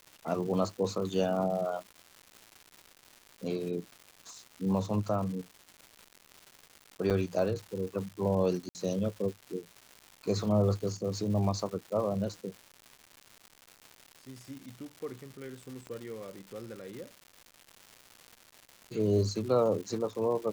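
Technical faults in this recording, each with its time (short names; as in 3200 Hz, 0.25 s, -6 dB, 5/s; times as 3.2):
crackle 340/s -40 dBFS
7.1–7.11 gap 6.8 ms
8.69–8.75 gap 59 ms
15.87 pop -30 dBFS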